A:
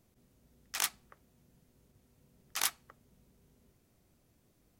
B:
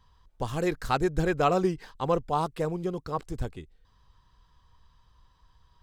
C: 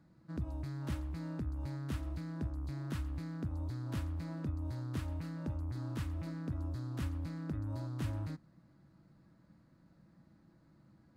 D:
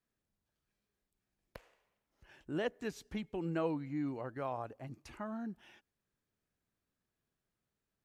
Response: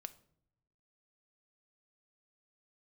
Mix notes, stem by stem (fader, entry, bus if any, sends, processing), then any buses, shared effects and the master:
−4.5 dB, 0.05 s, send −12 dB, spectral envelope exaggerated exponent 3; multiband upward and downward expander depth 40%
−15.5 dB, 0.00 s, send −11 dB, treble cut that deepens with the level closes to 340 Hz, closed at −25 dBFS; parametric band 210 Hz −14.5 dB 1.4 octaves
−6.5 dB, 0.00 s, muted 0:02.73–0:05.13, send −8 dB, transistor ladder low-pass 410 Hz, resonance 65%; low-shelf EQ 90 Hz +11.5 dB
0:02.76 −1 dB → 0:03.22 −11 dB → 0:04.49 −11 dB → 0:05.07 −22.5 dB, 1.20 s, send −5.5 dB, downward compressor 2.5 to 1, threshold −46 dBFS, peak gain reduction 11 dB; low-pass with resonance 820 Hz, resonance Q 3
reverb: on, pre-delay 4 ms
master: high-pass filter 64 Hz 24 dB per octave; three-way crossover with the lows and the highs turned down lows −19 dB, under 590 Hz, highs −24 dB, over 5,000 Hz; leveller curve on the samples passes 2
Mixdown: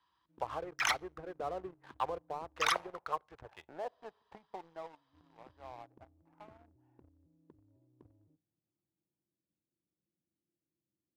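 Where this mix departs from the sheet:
stem B −15.5 dB → −5.5 dB
stem D −1.0 dB → +5.5 dB
reverb return +6.5 dB

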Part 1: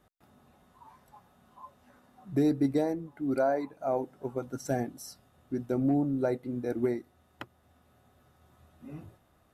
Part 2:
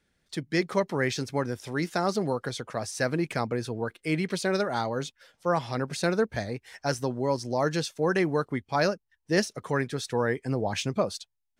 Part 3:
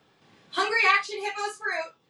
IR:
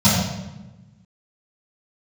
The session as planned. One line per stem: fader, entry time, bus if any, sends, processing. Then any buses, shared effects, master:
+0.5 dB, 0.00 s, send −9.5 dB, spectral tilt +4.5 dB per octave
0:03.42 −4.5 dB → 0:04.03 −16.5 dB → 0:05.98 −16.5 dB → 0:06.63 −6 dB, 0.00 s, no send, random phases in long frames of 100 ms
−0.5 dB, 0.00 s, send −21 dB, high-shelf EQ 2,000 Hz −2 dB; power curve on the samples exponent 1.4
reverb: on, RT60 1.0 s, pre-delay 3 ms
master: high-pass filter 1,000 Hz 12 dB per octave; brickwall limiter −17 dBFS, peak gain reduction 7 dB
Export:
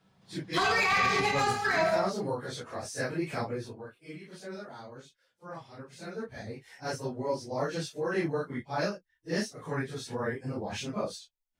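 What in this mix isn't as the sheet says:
stem 1: muted
stem 3 −0.5 dB → +10.5 dB
master: missing high-pass filter 1,000 Hz 12 dB per octave

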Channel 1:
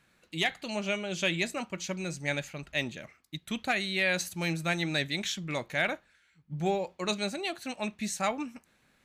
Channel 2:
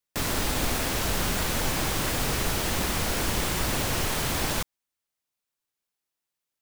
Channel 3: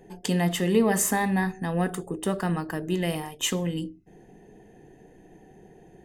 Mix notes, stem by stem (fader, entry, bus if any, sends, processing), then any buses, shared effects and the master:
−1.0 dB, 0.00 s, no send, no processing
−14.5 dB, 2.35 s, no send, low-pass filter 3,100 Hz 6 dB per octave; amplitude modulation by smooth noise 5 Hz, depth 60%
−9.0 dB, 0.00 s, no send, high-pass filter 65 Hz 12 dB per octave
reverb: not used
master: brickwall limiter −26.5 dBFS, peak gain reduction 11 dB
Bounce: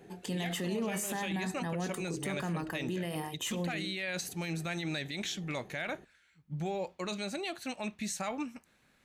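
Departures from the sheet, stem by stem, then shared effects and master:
stem 2: muted
stem 3 −9.0 dB → −3.0 dB

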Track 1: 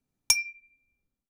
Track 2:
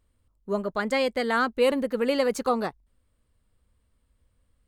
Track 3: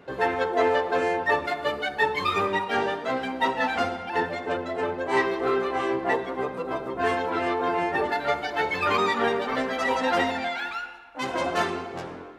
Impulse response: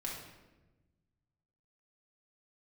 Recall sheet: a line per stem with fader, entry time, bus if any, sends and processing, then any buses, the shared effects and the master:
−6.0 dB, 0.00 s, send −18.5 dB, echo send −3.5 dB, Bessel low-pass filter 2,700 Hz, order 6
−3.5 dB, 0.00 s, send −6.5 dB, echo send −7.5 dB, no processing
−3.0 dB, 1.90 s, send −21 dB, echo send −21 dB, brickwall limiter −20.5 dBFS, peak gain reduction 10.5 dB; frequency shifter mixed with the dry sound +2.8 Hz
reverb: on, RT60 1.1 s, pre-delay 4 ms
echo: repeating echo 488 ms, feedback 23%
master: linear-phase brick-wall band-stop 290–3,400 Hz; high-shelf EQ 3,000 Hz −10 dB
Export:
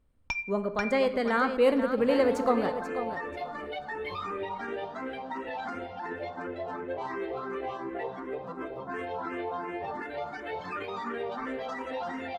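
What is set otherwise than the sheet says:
stem 1 −6.0 dB → +2.0 dB
master: missing linear-phase brick-wall band-stop 290–3,400 Hz

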